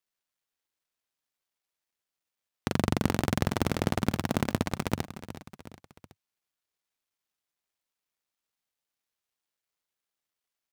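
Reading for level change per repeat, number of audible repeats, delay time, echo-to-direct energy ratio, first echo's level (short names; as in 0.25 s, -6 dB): -5.0 dB, 3, 0.369 s, -12.0 dB, -13.5 dB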